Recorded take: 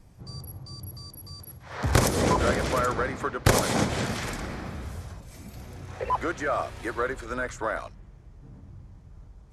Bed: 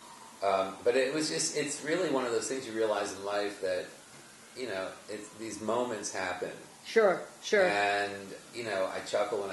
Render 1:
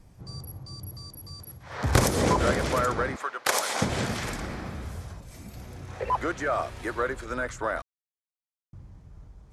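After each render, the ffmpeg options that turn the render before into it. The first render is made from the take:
ffmpeg -i in.wav -filter_complex "[0:a]asettb=1/sr,asplit=3[link_01][link_02][link_03];[link_01]atrim=end=3.164[link_04];[link_02]atrim=start=3.16:end=3.82,asetpts=PTS-STARTPTS,afade=type=in:duration=0.004:curve=qsin,afade=type=out:start_time=0.656:duration=0.004:curve=qsin,highpass=710[link_05];[link_03]atrim=start=3.816[link_06];[link_04][link_05]acrossfade=duration=0.004:curve1=hsin:curve2=qsin[link_07];[link_07][link_06]acrossfade=duration=0.004:curve1=qsin:curve2=hsin,asplit=3[link_08][link_09][link_10];[link_08]atrim=end=7.82,asetpts=PTS-STARTPTS,afade=type=out:start_time=7.816:duration=0.004:curve=hsin[link_11];[link_09]atrim=start=7.82:end=8.73,asetpts=PTS-STARTPTS,volume=0[link_12];[link_10]atrim=start=8.73,asetpts=PTS-STARTPTS,afade=type=in:duration=0.004:curve=hsin[link_13];[link_11][link_12][link_13]concat=n=3:v=0:a=1" out.wav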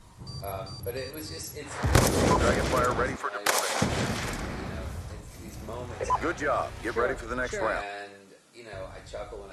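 ffmpeg -i in.wav -i bed.wav -filter_complex "[1:a]volume=-8.5dB[link_01];[0:a][link_01]amix=inputs=2:normalize=0" out.wav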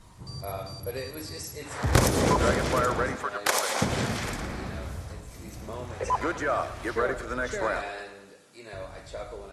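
ffmpeg -i in.wav -af "aecho=1:1:111|222|333|444|555:0.2|0.108|0.0582|0.0314|0.017" out.wav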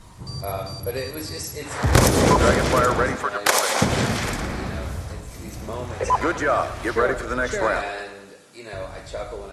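ffmpeg -i in.wav -af "volume=6.5dB,alimiter=limit=-2dB:level=0:latency=1" out.wav

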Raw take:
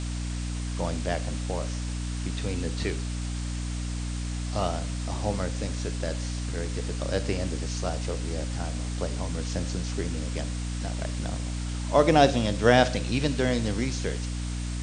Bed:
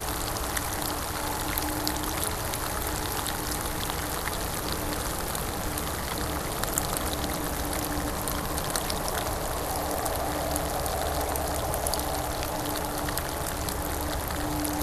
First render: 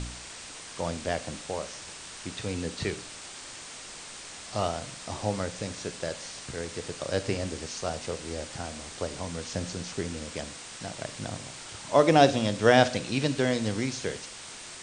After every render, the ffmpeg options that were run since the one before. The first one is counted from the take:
ffmpeg -i in.wav -af "bandreject=frequency=60:width_type=h:width=4,bandreject=frequency=120:width_type=h:width=4,bandreject=frequency=180:width_type=h:width=4,bandreject=frequency=240:width_type=h:width=4,bandreject=frequency=300:width_type=h:width=4" out.wav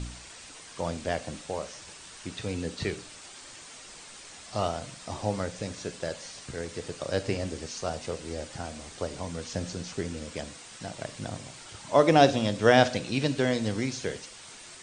ffmpeg -i in.wav -af "afftdn=noise_reduction=6:noise_floor=-44" out.wav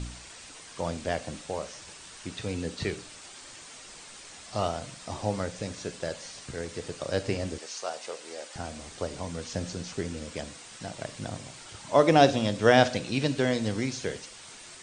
ffmpeg -i in.wav -filter_complex "[0:a]asettb=1/sr,asplit=3[link_01][link_02][link_03];[link_01]atrim=end=7.584[link_04];[link_02]atrim=start=7.58:end=8.56,asetpts=PTS-STARTPTS,afade=type=in:duration=0.004:curve=qsin,afade=type=out:start_time=0.976:duration=0.004:curve=qsin,highpass=530[link_05];[link_03]atrim=start=8.556[link_06];[link_04][link_05]acrossfade=duration=0.004:curve1=hsin:curve2=qsin[link_07];[link_07][link_06]acrossfade=duration=0.004:curve1=qsin:curve2=hsin" out.wav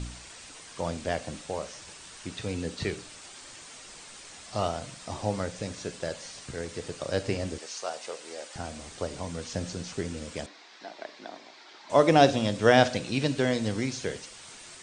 ffmpeg -i in.wav -filter_complex "[0:a]asettb=1/sr,asplit=3[link_01][link_02][link_03];[link_01]atrim=end=10.464[link_04];[link_02]atrim=start=10.46:end=11.9,asetpts=PTS-STARTPTS,afade=type=in:duration=0.004:curve=qsin,afade=type=out:start_time=1.436:duration=0.004:curve=qsin,highpass=frequency=320:width=0.5412,highpass=frequency=320:width=1.3066,equalizer=frequency=510:width_type=q:width=4:gain=-9,equalizer=frequency=1300:width_type=q:width=4:gain=-4,equalizer=frequency=2900:width_type=q:width=4:gain=-7,lowpass=frequency=4600:width=0.5412,lowpass=frequency=4600:width=1.3066[link_05];[link_03]atrim=start=11.896[link_06];[link_04][link_05]acrossfade=duration=0.004:curve1=hsin:curve2=qsin[link_07];[link_07][link_06]acrossfade=duration=0.004:curve1=qsin:curve2=hsin" out.wav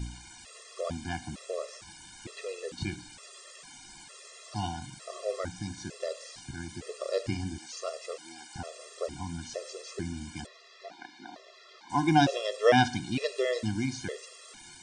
ffmpeg -i in.wav -af "afftfilt=real='re*gt(sin(2*PI*1.1*pts/sr)*(1-2*mod(floor(b*sr/1024/350),2)),0)':imag='im*gt(sin(2*PI*1.1*pts/sr)*(1-2*mod(floor(b*sr/1024/350),2)),0)':win_size=1024:overlap=0.75" out.wav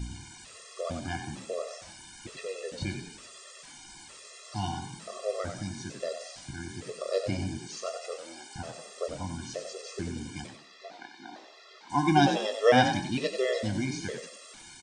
ffmpeg -i in.wav -filter_complex "[0:a]asplit=2[link_01][link_02];[link_02]adelay=21,volume=-12dB[link_03];[link_01][link_03]amix=inputs=2:normalize=0,asplit=5[link_04][link_05][link_06][link_07][link_08];[link_05]adelay=92,afreqshift=37,volume=-8dB[link_09];[link_06]adelay=184,afreqshift=74,volume=-17.1dB[link_10];[link_07]adelay=276,afreqshift=111,volume=-26.2dB[link_11];[link_08]adelay=368,afreqshift=148,volume=-35.4dB[link_12];[link_04][link_09][link_10][link_11][link_12]amix=inputs=5:normalize=0" out.wav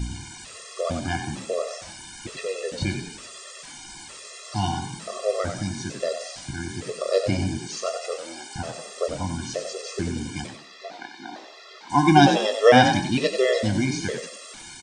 ffmpeg -i in.wav -af "volume=7.5dB,alimiter=limit=-3dB:level=0:latency=1" out.wav

